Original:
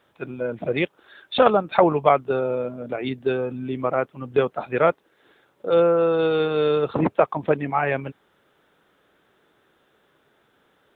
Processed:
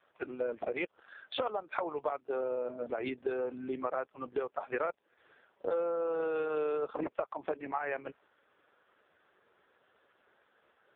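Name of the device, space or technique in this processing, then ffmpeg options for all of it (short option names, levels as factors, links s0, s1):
voicemail: -filter_complex "[0:a]asettb=1/sr,asplit=3[s0][s1][s2];[s0]atrim=end=4.674[s3];[s1]atrim=start=4.67:end=5.77,asetpts=PTS-STARTPTS,afade=t=in:d=0.004:c=qsin,afade=t=out:st=1.096:d=0.004:c=qsin,equalizer=f=120:w=3.5:g=-2[s4];[s2]atrim=start=5.766[s5];[s3][s4]acrossfade=d=0.004:c1=hsin:c2=qsin[s6];[s6][s5]acrossfade=d=0.004:c1=qsin:c2=hsin,highpass=410,lowpass=3100,acompressor=threshold=0.0355:ratio=12" -ar 8000 -c:a libopencore_amrnb -b:a 4750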